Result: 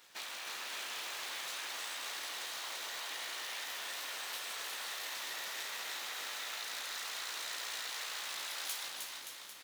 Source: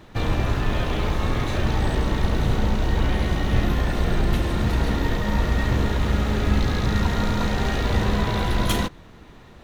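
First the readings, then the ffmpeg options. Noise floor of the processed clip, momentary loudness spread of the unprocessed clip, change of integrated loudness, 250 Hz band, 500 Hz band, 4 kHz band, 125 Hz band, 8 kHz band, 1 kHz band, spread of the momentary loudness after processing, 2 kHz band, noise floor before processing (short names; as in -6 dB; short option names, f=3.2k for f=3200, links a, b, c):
-49 dBFS, 2 LU, -16.0 dB, under -40 dB, -25.5 dB, -5.5 dB, under -40 dB, -1.0 dB, -17.0 dB, 2 LU, -10.5 dB, -46 dBFS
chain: -filter_complex "[0:a]flanger=delay=16:depth=6.1:speed=0.65,highshelf=f=7.4k:g=-5,aeval=exprs='abs(val(0))':c=same,asplit=2[a][b];[b]adelay=194,lowpass=f=2k:p=1,volume=-14.5dB,asplit=2[c][d];[d]adelay=194,lowpass=f=2k:p=1,volume=0.45,asplit=2[e][f];[f]adelay=194,lowpass=f=2k:p=1,volume=0.45,asplit=2[g][h];[h]adelay=194,lowpass=f=2k:p=1,volume=0.45[i];[c][e][g][i]amix=inputs=4:normalize=0[j];[a][j]amix=inputs=2:normalize=0,afftfilt=real='re*lt(hypot(re,im),0.1)':imag='im*lt(hypot(re,im),0.1)':win_size=1024:overlap=0.75,aderivative,acompressor=threshold=-48dB:ratio=3,asplit=2[k][l];[l]aecho=0:1:310|573.5|797.5|987.9|1150:0.631|0.398|0.251|0.158|0.1[m];[k][m]amix=inputs=2:normalize=0,volume=6.5dB"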